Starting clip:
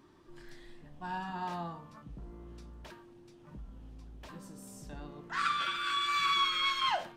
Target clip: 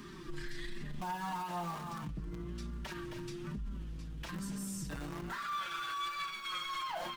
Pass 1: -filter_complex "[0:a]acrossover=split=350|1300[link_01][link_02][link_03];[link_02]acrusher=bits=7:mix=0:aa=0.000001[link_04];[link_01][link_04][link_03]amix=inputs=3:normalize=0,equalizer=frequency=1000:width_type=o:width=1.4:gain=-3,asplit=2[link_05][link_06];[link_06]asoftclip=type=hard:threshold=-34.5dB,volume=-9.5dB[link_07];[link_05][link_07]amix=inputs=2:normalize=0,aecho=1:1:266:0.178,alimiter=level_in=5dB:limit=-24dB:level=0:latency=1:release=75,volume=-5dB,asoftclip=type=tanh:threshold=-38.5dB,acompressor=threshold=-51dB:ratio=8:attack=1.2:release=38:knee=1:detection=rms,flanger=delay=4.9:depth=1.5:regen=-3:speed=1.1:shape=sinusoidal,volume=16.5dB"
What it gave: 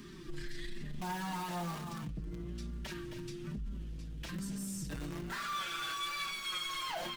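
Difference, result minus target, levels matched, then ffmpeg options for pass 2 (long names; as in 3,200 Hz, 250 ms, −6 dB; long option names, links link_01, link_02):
soft clipping: distortion +8 dB; 1,000 Hz band −2.5 dB
-filter_complex "[0:a]acrossover=split=350|1300[link_01][link_02][link_03];[link_02]acrusher=bits=7:mix=0:aa=0.000001[link_04];[link_01][link_04][link_03]amix=inputs=3:normalize=0,equalizer=frequency=1000:width_type=o:width=1.4:gain=4.5,asplit=2[link_05][link_06];[link_06]asoftclip=type=hard:threshold=-34.5dB,volume=-9.5dB[link_07];[link_05][link_07]amix=inputs=2:normalize=0,aecho=1:1:266:0.178,alimiter=level_in=5dB:limit=-24dB:level=0:latency=1:release=75,volume=-5dB,asoftclip=type=tanh:threshold=-31.5dB,acompressor=threshold=-51dB:ratio=8:attack=1.2:release=38:knee=1:detection=rms,flanger=delay=4.9:depth=1.5:regen=-3:speed=1.1:shape=sinusoidal,volume=16.5dB"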